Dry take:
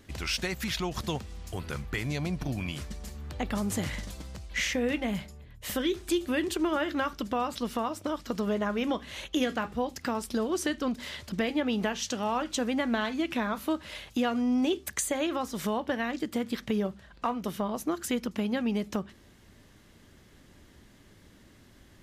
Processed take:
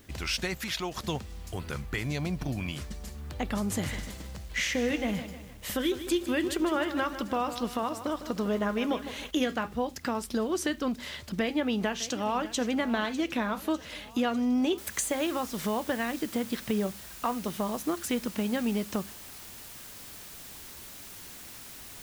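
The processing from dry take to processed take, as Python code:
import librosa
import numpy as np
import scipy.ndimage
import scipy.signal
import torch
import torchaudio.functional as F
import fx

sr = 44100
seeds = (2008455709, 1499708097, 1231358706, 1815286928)

y = fx.bass_treble(x, sr, bass_db=-8, treble_db=0, at=(0.57, 1.04))
y = fx.echo_crushed(y, sr, ms=154, feedback_pct=55, bits=8, wet_db=-11, at=(3.7, 9.31))
y = fx.echo_throw(y, sr, start_s=11.4, length_s=1.2, ms=600, feedback_pct=65, wet_db=-15.0)
y = fx.noise_floor_step(y, sr, seeds[0], at_s=14.78, before_db=-64, after_db=-46, tilt_db=0.0)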